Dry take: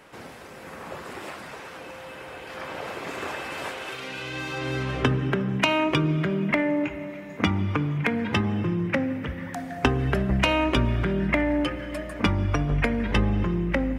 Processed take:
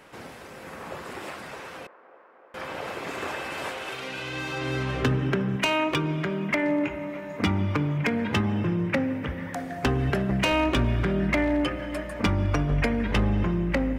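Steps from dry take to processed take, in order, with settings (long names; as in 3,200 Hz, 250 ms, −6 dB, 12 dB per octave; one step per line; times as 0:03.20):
0:05.56–0:06.63: low-shelf EQ 370 Hz −5.5 dB
0:10.10–0:10.52: high-pass filter 100 Hz
gain into a clipping stage and back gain 17 dB
0:01.87–0:02.54: silence
delay with a band-pass on its return 305 ms, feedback 82%, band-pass 780 Hz, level −15.5 dB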